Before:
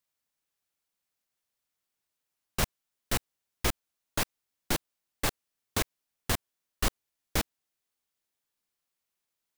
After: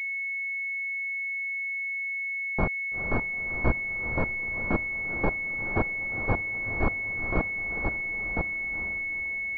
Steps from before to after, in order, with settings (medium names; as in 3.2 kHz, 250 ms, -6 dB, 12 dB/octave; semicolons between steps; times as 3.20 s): chunks repeated in reverse 526 ms, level -3 dB; echo that smears into a reverb 452 ms, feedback 46%, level -9.5 dB; class-D stage that switches slowly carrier 2.2 kHz; trim +3.5 dB